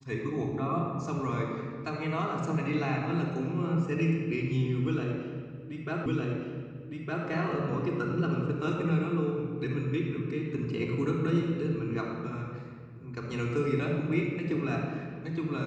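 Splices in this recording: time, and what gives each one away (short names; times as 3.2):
6.06 repeat of the last 1.21 s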